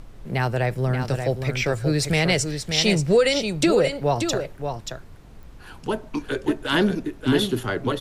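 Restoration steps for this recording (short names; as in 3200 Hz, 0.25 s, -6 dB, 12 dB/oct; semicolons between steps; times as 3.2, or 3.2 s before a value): de-click; noise print and reduce 26 dB; inverse comb 0.581 s -7 dB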